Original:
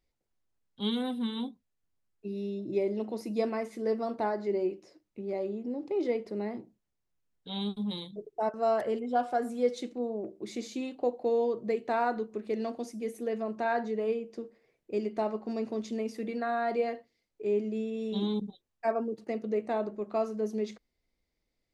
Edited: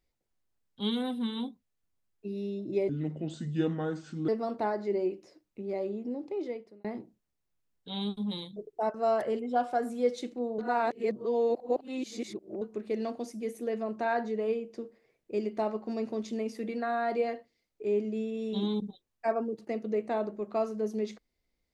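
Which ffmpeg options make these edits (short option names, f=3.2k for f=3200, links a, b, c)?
-filter_complex "[0:a]asplit=6[a][b][c][d][e][f];[a]atrim=end=2.894[g];[b]atrim=start=2.89:end=3.88,asetpts=PTS-STARTPTS,asetrate=31311,aresample=44100[h];[c]atrim=start=3.876:end=6.44,asetpts=PTS-STARTPTS,afade=t=out:st=1.814:d=0.75[i];[d]atrim=start=6.44:end=10.182,asetpts=PTS-STARTPTS,afade=t=in:d=0.004:c=hsin[j];[e]atrim=start=10.178:end=12.212,asetpts=PTS-STARTPTS,areverse[k];[f]atrim=start=12.208[l];[g][h]acrossfade=d=0.004:c1=hsin:c2=hsin[m];[i][j]concat=n=2:v=0:a=1[n];[m][n]acrossfade=d=0.004:c1=hsin:c2=hsin[o];[o][k]acrossfade=d=0.004:c1=hsin:c2=hsin[p];[p][l]acrossfade=d=0.004:c1=hsin:c2=hsin"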